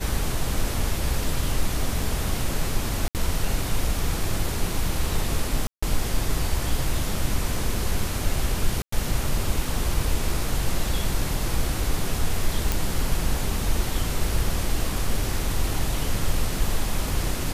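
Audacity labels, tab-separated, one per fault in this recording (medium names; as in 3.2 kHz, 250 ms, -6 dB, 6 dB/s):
3.080000	3.150000	dropout 68 ms
5.670000	5.830000	dropout 155 ms
8.820000	8.920000	dropout 104 ms
12.720000	12.720000	pop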